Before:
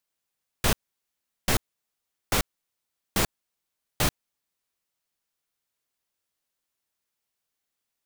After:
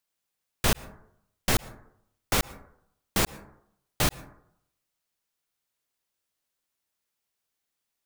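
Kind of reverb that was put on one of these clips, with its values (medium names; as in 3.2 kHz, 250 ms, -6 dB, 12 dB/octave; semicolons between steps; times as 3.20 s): plate-style reverb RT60 0.73 s, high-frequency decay 0.3×, pre-delay 100 ms, DRR 19 dB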